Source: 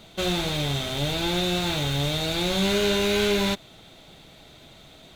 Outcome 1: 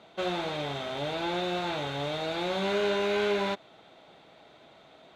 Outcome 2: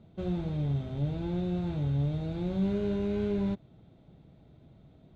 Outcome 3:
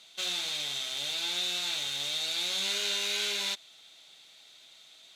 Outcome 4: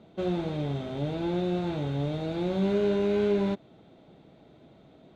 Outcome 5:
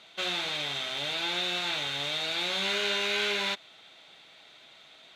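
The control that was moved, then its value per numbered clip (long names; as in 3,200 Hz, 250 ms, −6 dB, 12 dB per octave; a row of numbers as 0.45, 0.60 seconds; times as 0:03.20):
resonant band-pass, frequency: 840, 110, 5,800, 290, 2,200 Hertz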